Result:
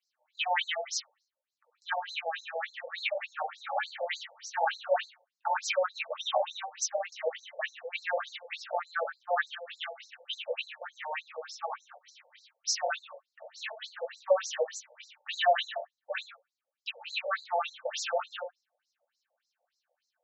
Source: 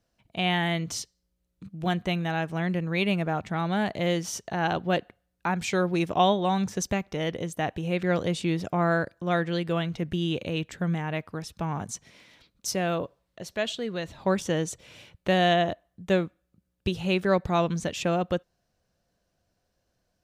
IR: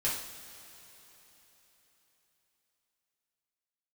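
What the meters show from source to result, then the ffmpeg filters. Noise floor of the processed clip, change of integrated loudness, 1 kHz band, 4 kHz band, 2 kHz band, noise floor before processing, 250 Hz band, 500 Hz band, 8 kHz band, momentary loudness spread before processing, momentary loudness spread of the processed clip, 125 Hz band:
under -85 dBFS, -6.0 dB, -3.5 dB, -2.5 dB, -3.0 dB, -77 dBFS, under -40 dB, -5.5 dB, -1.5 dB, 10 LU, 12 LU, under -40 dB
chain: -filter_complex "[0:a]asuperstop=centerf=1000:order=4:qfactor=7.5[s0];[1:a]atrim=start_sample=2205,afade=t=out:st=0.19:d=0.01,atrim=end_sample=8820[s1];[s0][s1]afir=irnorm=-1:irlink=0,afftfilt=real='re*between(b*sr/1024,650*pow(5700/650,0.5+0.5*sin(2*PI*3.4*pts/sr))/1.41,650*pow(5700/650,0.5+0.5*sin(2*PI*3.4*pts/sr))*1.41)':imag='im*between(b*sr/1024,650*pow(5700/650,0.5+0.5*sin(2*PI*3.4*pts/sr))/1.41,650*pow(5700/650,0.5+0.5*sin(2*PI*3.4*pts/sr))*1.41)':win_size=1024:overlap=0.75,volume=0.794"

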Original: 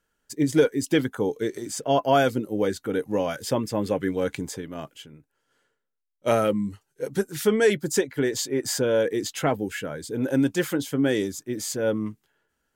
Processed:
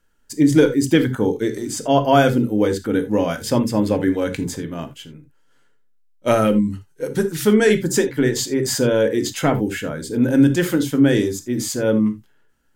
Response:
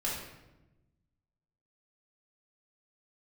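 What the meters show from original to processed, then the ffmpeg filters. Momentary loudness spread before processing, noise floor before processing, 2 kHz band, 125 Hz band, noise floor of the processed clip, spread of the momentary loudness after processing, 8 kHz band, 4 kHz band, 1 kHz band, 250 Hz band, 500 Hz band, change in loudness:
11 LU, -77 dBFS, +5.0 dB, +9.0 dB, -56 dBFS, 11 LU, +5.0 dB, +5.0 dB, +5.0 dB, +8.5 dB, +4.5 dB, +6.5 dB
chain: -filter_complex "[0:a]asplit=2[s0][s1];[s1]equalizer=f=640:t=o:w=0.42:g=-10.5[s2];[1:a]atrim=start_sample=2205,atrim=end_sample=3969,lowshelf=f=390:g=11[s3];[s2][s3]afir=irnorm=-1:irlink=0,volume=0.335[s4];[s0][s4]amix=inputs=2:normalize=0,volume=1.33"

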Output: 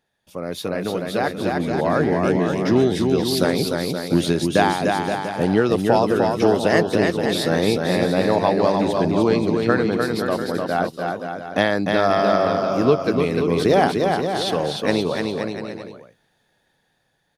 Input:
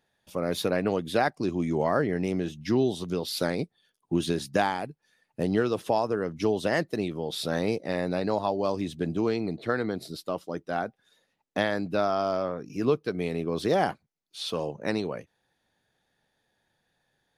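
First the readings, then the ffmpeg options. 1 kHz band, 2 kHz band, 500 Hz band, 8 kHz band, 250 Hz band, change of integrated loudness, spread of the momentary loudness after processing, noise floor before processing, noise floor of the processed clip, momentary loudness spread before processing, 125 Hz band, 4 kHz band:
+9.0 dB, +9.0 dB, +9.0 dB, +9.0 dB, +9.0 dB, +8.5 dB, 8 LU, -77 dBFS, -68 dBFS, 9 LU, +9.0 dB, +9.0 dB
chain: -af "aecho=1:1:300|525|693.8|820.3|915.2:0.631|0.398|0.251|0.158|0.1,dynaudnorm=f=290:g=13:m=2.82"

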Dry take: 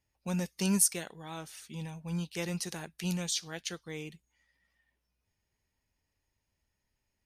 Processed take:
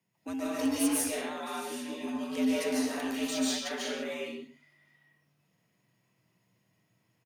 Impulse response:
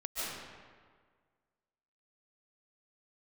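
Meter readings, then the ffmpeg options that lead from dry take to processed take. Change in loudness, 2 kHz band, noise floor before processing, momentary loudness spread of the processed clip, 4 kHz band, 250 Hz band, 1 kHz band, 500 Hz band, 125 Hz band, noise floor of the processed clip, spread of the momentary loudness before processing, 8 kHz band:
+1.5 dB, +5.0 dB, -83 dBFS, 10 LU, +2.5 dB, +5.0 dB, +7.5 dB, +7.5 dB, -19.0 dB, -75 dBFS, 17 LU, -3.0 dB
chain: -filter_complex "[0:a]afreqshift=86,equalizer=f=5800:w=1:g=-4.5,asplit=2[s0][s1];[s1]acompressor=threshold=0.00708:ratio=6,volume=0.75[s2];[s0][s2]amix=inputs=2:normalize=0,bandreject=f=50:t=h:w=6,bandreject=f=100:t=h:w=6,bandreject=f=150:t=h:w=6,acrossover=split=120[s3][s4];[s4]asoftclip=type=tanh:threshold=0.0422[s5];[s3][s5]amix=inputs=2:normalize=0,aecho=1:1:124:0.126[s6];[1:a]atrim=start_sample=2205,afade=t=out:st=0.4:d=0.01,atrim=end_sample=18081[s7];[s6][s7]afir=irnorm=-1:irlink=0,volume=1.19"

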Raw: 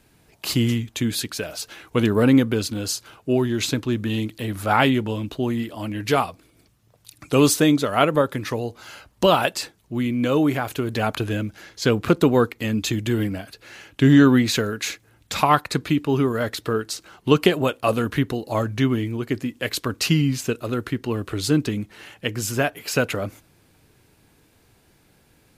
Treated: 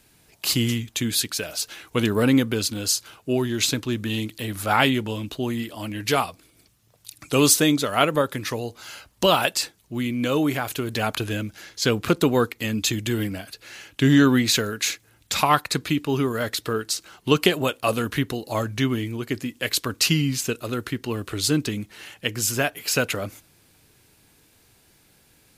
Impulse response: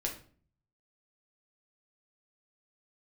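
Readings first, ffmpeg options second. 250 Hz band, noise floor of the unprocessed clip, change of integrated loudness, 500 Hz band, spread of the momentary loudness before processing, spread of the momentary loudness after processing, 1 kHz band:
-3.0 dB, -59 dBFS, -1.0 dB, -2.5 dB, 12 LU, 11 LU, -1.5 dB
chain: -af "highshelf=f=2300:g=8.5,volume=0.708"

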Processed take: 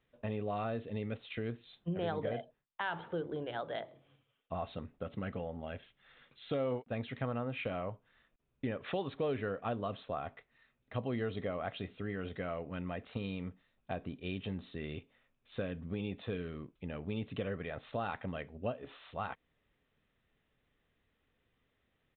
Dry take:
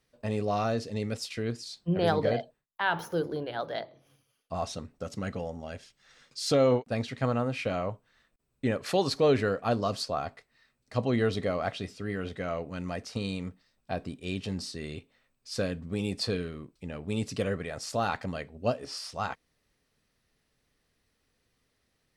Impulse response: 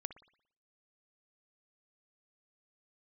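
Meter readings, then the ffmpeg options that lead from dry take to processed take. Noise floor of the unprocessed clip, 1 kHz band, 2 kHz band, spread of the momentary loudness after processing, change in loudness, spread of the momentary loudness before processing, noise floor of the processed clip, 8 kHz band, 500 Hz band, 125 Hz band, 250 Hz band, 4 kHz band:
-76 dBFS, -8.0 dB, -7.5 dB, 8 LU, -8.5 dB, 14 LU, -79 dBFS, under -35 dB, -8.5 dB, -7.5 dB, -7.5 dB, -12.0 dB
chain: -af "acompressor=threshold=0.02:ratio=2.5,aresample=8000,aresample=44100,volume=0.794"

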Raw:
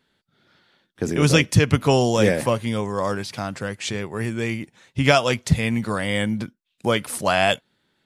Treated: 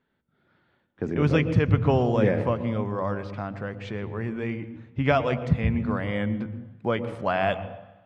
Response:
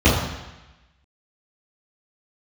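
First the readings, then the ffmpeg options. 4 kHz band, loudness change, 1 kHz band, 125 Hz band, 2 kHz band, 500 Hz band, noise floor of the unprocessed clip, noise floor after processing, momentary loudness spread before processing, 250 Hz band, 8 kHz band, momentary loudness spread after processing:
-14.5 dB, -4.5 dB, -4.5 dB, -2.5 dB, -8.0 dB, -4.0 dB, -73 dBFS, -71 dBFS, 12 LU, -3.5 dB, under -25 dB, 13 LU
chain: -filter_complex "[0:a]lowpass=1900,asplit=2[s0][s1];[1:a]atrim=start_sample=2205,adelay=109[s2];[s1][s2]afir=irnorm=-1:irlink=0,volume=0.0158[s3];[s0][s3]amix=inputs=2:normalize=0,volume=0.596"

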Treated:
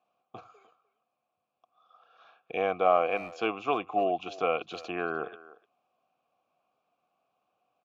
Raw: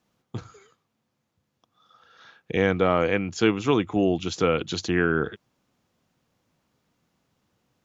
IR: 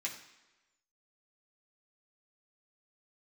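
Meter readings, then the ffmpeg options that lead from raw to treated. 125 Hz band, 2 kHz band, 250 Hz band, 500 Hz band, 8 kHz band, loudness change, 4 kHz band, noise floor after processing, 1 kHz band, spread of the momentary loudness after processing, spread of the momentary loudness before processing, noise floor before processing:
-20.0 dB, -7.5 dB, -14.0 dB, -5.0 dB, no reading, -6.0 dB, -10.0 dB, -83 dBFS, +1.5 dB, 12 LU, 16 LU, -77 dBFS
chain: -filter_complex "[0:a]asplit=3[s0][s1][s2];[s0]bandpass=f=730:t=q:w=8,volume=1[s3];[s1]bandpass=f=1090:t=q:w=8,volume=0.501[s4];[s2]bandpass=f=2440:t=q:w=8,volume=0.355[s5];[s3][s4][s5]amix=inputs=3:normalize=0,asplit=2[s6][s7];[s7]adelay=300,highpass=300,lowpass=3400,asoftclip=type=hard:threshold=0.0376,volume=0.126[s8];[s6][s8]amix=inputs=2:normalize=0,volume=2.51"

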